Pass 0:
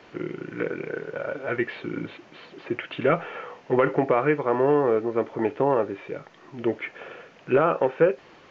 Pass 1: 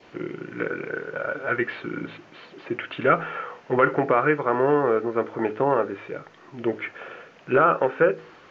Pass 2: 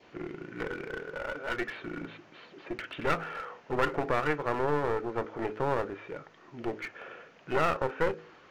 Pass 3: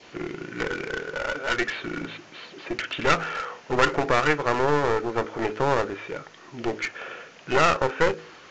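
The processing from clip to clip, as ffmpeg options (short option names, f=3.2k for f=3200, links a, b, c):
-af "bandreject=f=53.59:t=h:w=4,bandreject=f=107.18:t=h:w=4,bandreject=f=160.77:t=h:w=4,bandreject=f=214.36:t=h:w=4,bandreject=f=267.95:t=h:w=4,bandreject=f=321.54:t=h:w=4,bandreject=f=375.13:t=h:w=4,bandreject=f=428.72:t=h:w=4,bandreject=f=482.31:t=h:w=4,adynamicequalizer=threshold=0.00708:dfrequency=1400:dqfactor=2.4:tfrequency=1400:tqfactor=2.4:attack=5:release=100:ratio=0.375:range=4:mode=boostabove:tftype=bell"
-af "aeval=exprs='clip(val(0),-1,0.0355)':c=same,volume=-6dB"
-af "crystalizer=i=3.5:c=0,aresample=16000,aresample=44100,volume=6dB"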